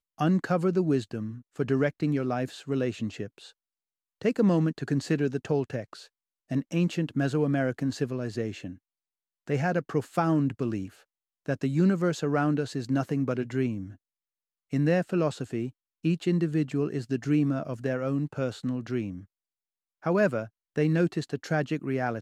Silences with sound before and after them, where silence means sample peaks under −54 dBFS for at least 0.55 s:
0:03.52–0:04.21
0:08.78–0:09.47
0:13.96–0:14.71
0:19.25–0:20.02

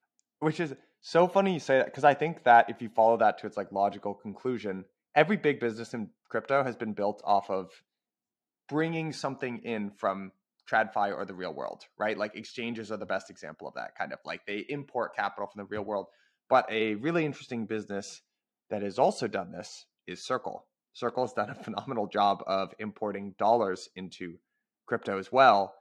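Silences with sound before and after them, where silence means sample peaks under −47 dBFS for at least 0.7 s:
0:07.77–0:08.69

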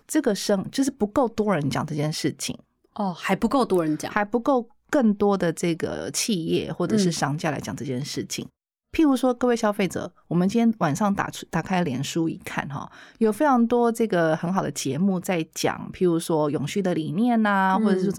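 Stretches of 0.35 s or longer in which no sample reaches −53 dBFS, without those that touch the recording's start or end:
0:08.49–0:08.94

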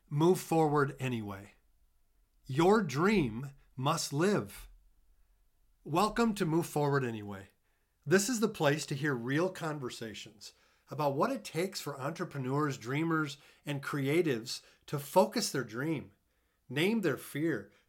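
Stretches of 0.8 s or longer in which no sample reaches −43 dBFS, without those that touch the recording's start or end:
0:01.45–0:02.49
0:04.65–0:05.86

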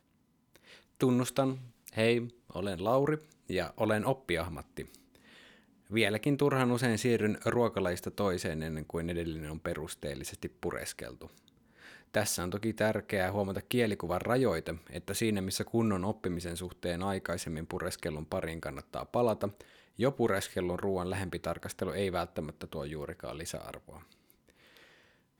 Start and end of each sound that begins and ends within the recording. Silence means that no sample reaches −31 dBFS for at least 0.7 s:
0:01.01–0:04.82
0:05.92–0:11.04
0:12.14–0:23.74

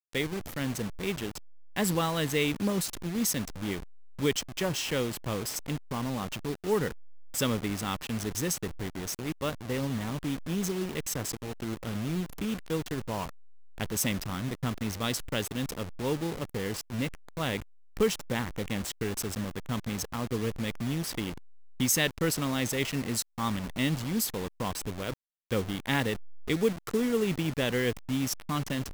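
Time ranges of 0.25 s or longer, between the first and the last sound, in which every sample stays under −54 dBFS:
0:25.14–0:25.51

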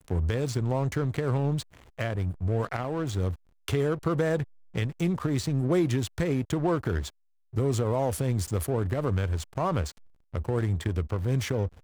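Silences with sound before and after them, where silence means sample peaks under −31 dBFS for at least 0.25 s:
0:01.62–0:01.99
0:03.34–0:03.68
0:04.43–0:04.75
0:07.08–0:07.56
0:09.90–0:10.35

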